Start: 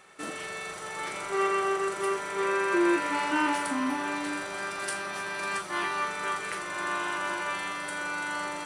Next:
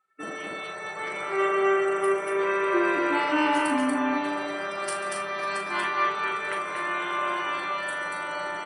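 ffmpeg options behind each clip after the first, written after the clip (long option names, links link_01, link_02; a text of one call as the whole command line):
ffmpeg -i in.wav -filter_complex "[0:a]afftdn=noise_reduction=32:noise_floor=-42,asplit=2[link_01][link_02];[link_02]adelay=39,volume=-7.5dB[link_03];[link_01][link_03]amix=inputs=2:normalize=0,asplit=2[link_04][link_05];[link_05]aecho=0:1:140|236:0.211|0.708[link_06];[link_04][link_06]amix=inputs=2:normalize=0,volume=1.5dB" out.wav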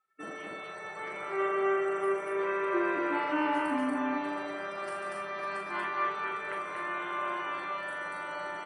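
ffmpeg -i in.wav -filter_complex "[0:a]acrossover=split=2500[link_01][link_02];[link_02]acompressor=threshold=-47dB:ratio=4:attack=1:release=60[link_03];[link_01][link_03]amix=inputs=2:normalize=0,volume=-5.5dB" out.wav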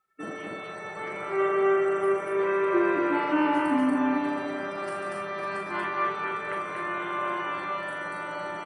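ffmpeg -i in.wav -af "lowshelf=frequency=330:gain=8.5,aecho=1:1:502:0.133,volume=2.5dB" out.wav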